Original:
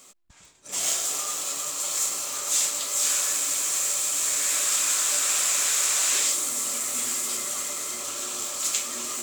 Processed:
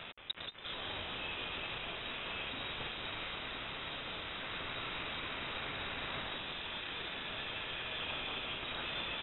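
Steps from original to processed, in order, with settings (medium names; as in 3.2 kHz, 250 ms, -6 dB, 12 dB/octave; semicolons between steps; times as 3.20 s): single-diode clipper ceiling -26 dBFS; bass shelf 250 Hz +6 dB; waveshaping leveller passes 1; peak limiter -37.5 dBFS, peak gain reduction 27 dB; bit crusher 8-bit; on a send: frequency-shifting echo 175 ms, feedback 52%, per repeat +120 Hz, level -6 dB; on the sum: frequency inversion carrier 3.8 kHz; trim +11 dB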